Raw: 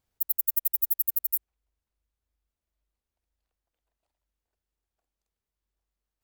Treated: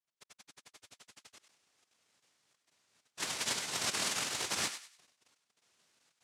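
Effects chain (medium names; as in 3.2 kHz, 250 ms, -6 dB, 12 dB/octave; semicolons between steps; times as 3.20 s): reverse; upward compressor, threshold -44 dBFS; reverse; painted sound rise, 3.17–4.70 s, 660–1700 Hz -32 dBFS; level held to a coarse grid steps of 16 dB; noise-vocoded speech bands 1; thinning echo 98 ms, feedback 31%, high-pass 1 kHz, level -9 dB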